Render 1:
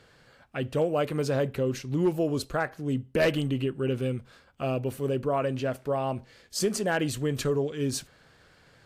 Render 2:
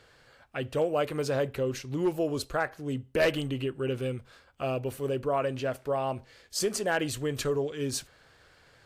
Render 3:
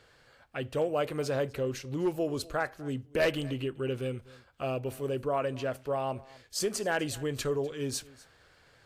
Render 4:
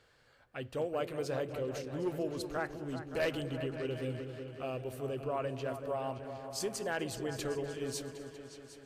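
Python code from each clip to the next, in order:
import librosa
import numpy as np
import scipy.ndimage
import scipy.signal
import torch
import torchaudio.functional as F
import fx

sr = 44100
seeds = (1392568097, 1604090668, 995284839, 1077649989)

y1 = fx.peak_eq(x, sr, hz=190.0, db=-7.5, octaves=1.2)
y2 = y1 + 10.0 ** (-21.5 / 20.0) * np.pad(y1, (int(249 * sr / 1000.0), 0))[:len(y1)]
y2 = F.gain(torch.from_numpy(y2), -2.0).numpy()
y3 = fx.echo_opening(y2, sr, ms=190, hz=400, octaves=2, feedback_pct=70, wet_db=-6)
y3 = F.gain(torch.from_numpy(y3), -6.0).numpy()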